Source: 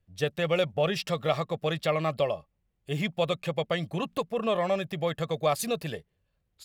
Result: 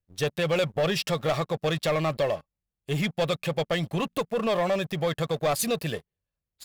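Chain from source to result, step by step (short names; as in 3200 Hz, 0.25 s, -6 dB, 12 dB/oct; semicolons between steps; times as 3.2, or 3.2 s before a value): high shelf 5500 Hz +3.5 dB; sample leveller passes 3; gain -7 dB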